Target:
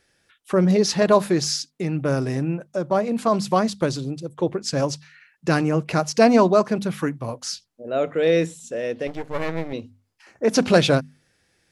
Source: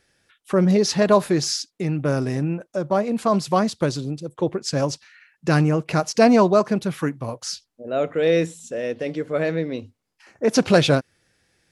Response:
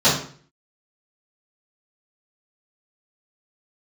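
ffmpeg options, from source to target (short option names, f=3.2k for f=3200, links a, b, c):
-filter_complex "[0:a]bandreject=f=50:t=h:w=6,bandreject=f=100:t=h:w=6,bandreject=f=150:t=h:w=6,bandreject=f=200:t=h:w=6,bandreject=f=250:t=h:w=6,asettb=1/sr,asplit=3[a][b][c];[a]atrim=end=9.074[d];[b]atrim=start=9.07:end=9.73,asetpts=PTS-STARTPTS,afade=t=in:d=0.004:c=qsin,afade=t=out:st=0.656:d=0.004:c=qsin,aeval=exprs='max(val(0),0)':c=same[e];[c]atrim=start=9.726[f];[d][e]acrossfade=d=0.004:c1=hsin:c2=qsin[g];[g][f]acrossfade=d=0.004:c1=qsin:c2=hsin"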